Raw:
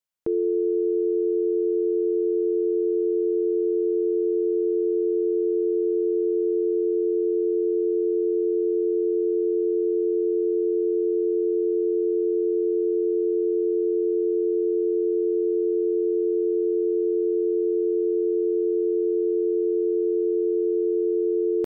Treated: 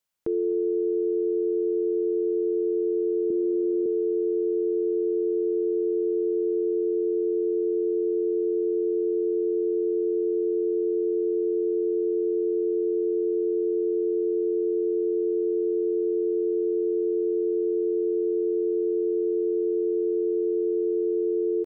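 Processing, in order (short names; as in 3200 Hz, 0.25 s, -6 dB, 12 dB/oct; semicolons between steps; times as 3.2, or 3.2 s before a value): 3.3–3.86 graphic EQ 125/250/500 Hz +11/+12/-4 dB; echo 0.252 s -22.5 dB; limiter -24.5 dBFS, peak gain reduction 11 dB; gain +5.5 dB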